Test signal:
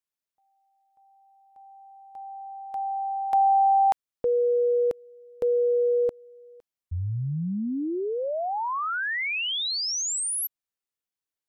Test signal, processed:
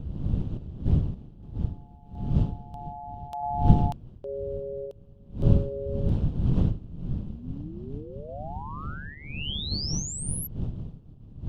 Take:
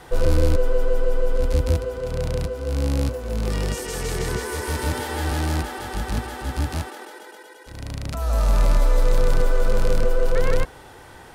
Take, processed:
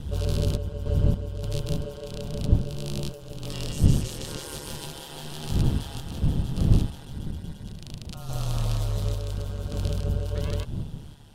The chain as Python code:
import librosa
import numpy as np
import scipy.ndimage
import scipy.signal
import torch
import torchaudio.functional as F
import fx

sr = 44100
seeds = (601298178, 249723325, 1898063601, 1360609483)

y = fx.dmg_wind(x, sr, seeds[0], corner_hz=93.0, level_db=-16.0)
y = fx.tremolo_random(y, sr, seeds[1], hz=3.5, depth_pct=55)
y = fx.high_shelf_res(y, sr, hz=2500.0, db=6.0, q=3.0)
y = y * np.sin(2.0 * np.pi * 73.0 * np.arange(len(y)) / sr)
y = F.gain(torch.from_numpy(y), -6.5).numpy()